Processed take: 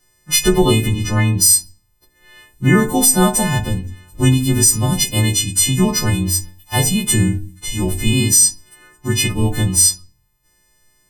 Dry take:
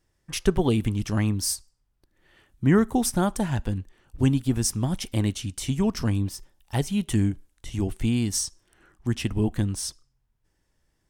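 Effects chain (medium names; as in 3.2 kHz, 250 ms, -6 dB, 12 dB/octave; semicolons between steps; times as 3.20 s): partials quantised in pitch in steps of 3 st; 0.86–1.40 s: treble shelf 6.5 kHz -> 4 kHz -11.5 dB; reverberation RT60 0.35 s, pre-delay 6 ms, DRR 5 dB; loudness maximiser +7.5 dB; trim -1 dB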